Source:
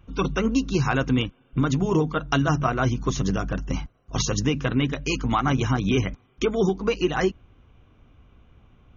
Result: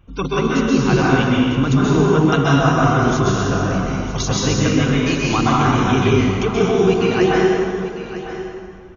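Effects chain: delay 951 ms -13 dB; plate-style reverb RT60 2.2 s, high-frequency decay 0.7×, pre-delay 115 ms, DRR -6 dB; trim +1 dB

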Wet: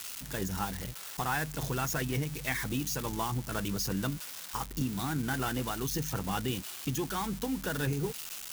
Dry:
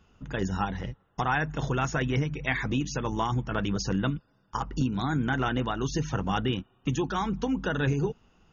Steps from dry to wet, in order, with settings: zero-crossing glitches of -22 dBFS; trim -5.5 dB

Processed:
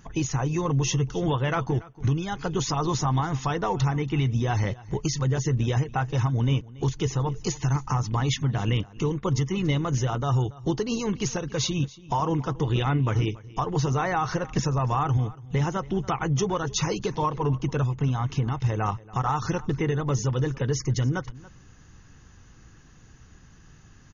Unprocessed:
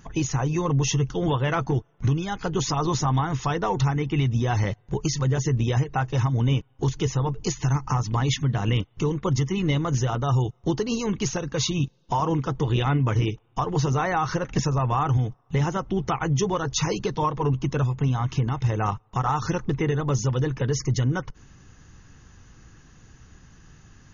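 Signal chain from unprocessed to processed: delay 282 ms -20.5 dB; trim -1.5 dB

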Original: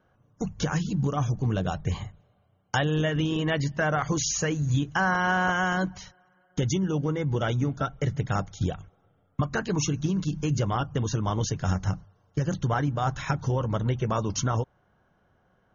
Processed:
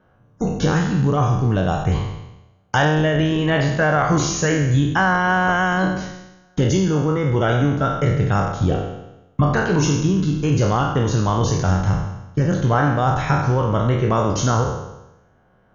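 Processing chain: spectral sustain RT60 0.95 s; treble shelf 3.5 kHz -8.5 dB; trim +6.5 dB

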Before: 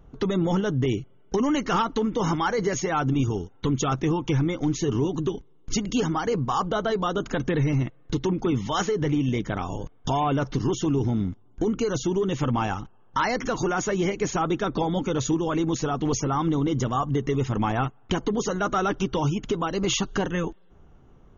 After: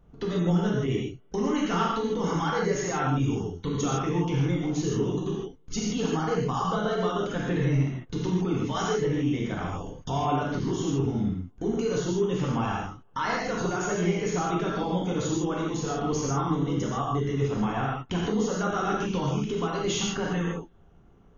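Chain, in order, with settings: gated-style reverb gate 180 ms flat, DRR -4.5 dB; trim -8 dB

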